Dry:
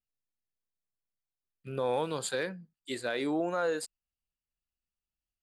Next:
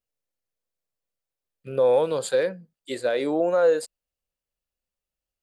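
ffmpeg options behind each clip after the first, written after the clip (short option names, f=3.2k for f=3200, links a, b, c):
-af "equalizer=f=530:t=o:w=0.63:g=11,volume=2.5dB"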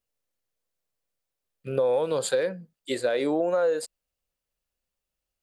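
-af "acompressor=threshold=-25dB:ratio=4,volume=3dB"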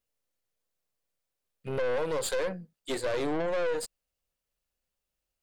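-af "aeval=exprs='(tanh(28.2*val(0)+0.55)-tanh(0.55))/28.2':c=same,volume=2dB"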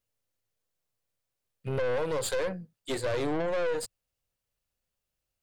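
-af "equalizer=f=110:t=o:w=0.56:g=10"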